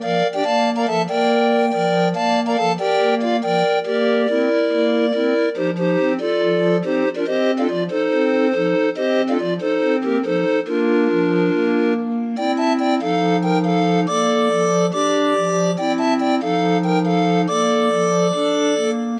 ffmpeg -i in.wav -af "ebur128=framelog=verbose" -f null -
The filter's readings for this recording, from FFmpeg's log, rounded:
Integrated loudness:
  I:         -18.2 LUFS
  Threshold: -28.2 LUFS
Loudness range:
  LRA:         1.0 LU
  Threshold: -38.3 LUFS
  LRA low:   -18.8 LUFS
  LRA high:  -17.8 LUFS